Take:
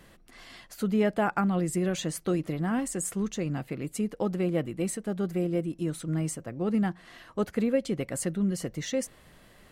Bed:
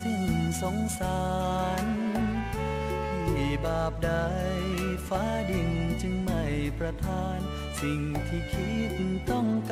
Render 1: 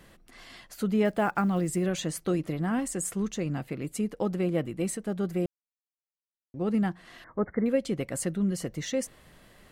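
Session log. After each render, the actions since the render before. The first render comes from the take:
0:01.05–0:01.88: one scale factor per block 7 bits
0:05.46–0:06.54: silence
0:07.24–0:07.66: linear-phase brick-wall low-pass 2,200 Hz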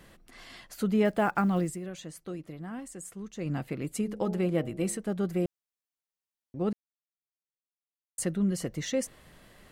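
0:01.61–0:03.51: duck −11 dB, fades 0.17 s
0:04.01–0:04.99: hum removal 69.91 Hz, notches 13
0:06.73–0:08.18: silence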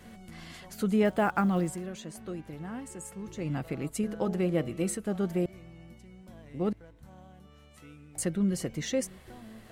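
mix in bed −21.5 dB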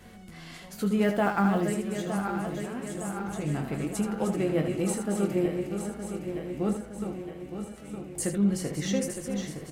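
feedback delay that plays each chunk backwards 457 ms, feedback 75%, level −7 dB
ambience of single reflections 20 ms −6.5 dB, 79 ms −8 dB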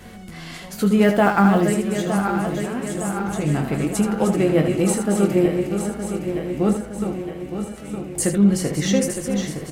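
level +9 dB

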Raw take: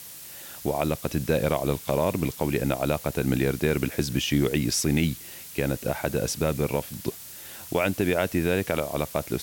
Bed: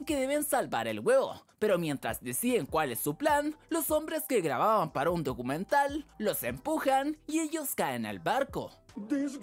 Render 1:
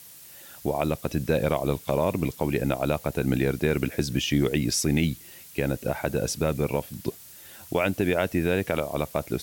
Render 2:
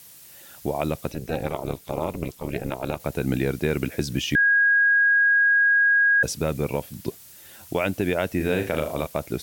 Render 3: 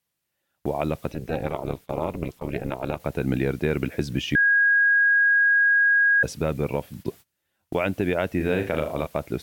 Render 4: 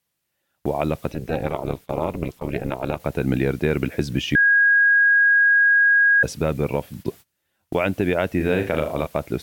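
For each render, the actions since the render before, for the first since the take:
broadband denoise 6 dB, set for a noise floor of −42 dBFS
0:01.11–0:03.00: amplitude modulation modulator 250 Hz, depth 80%; 0:04.35–0:06.23: beep over 1,640 Hz −15 dBFS; 0:08.36–0:09.07: flutter between parallel walls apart 6.6 metres, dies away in 0.34 s
noise gate −39 dBFS, range −26 dB; bass and treble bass 0 dB, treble −9 dB
level +3 dB

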